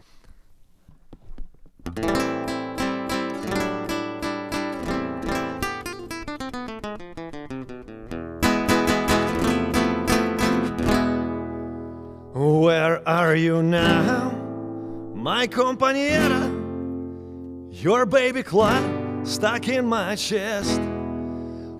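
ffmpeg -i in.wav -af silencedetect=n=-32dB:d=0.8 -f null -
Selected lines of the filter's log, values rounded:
silence_start: 0.00
silence_end: 1.13 | silence_duration: 1.13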